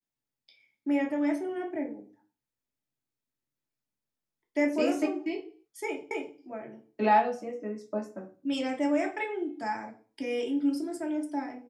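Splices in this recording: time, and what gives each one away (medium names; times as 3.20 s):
6.11 s: repeat of the last 0.26 s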